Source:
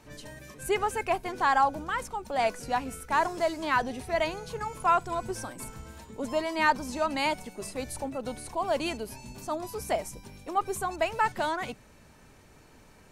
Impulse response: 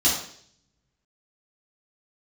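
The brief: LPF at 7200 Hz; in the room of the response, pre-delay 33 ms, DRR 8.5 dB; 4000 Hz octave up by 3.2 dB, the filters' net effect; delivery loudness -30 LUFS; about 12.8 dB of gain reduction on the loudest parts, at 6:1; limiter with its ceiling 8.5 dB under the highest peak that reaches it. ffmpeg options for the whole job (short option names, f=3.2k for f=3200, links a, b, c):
-filter_complex "[0:a]lowpass=7.2k,equalizer=f=4k:t=o:g=4.5,acompressor=threshold=-32dB:ratio=6,alimiter=level_in=5.5dB:limit=-24dB:level=0:latency=1,volume=-5.5dB,asplit=2[a][b];[1:a]atrim=start_sample=2205,adelay=33[c];[b][c]afir=irnorm=-1:irlink=0,volume=-22.5dB[d];[a][d]amix=inputs=2:normalize=0,volume=9dB"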